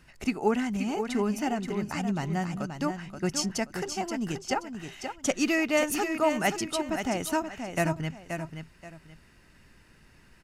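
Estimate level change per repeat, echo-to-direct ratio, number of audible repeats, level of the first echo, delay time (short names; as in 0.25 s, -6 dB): -11.5 dB, -7.0 dB, 2, -7.5 dB, 0.528 s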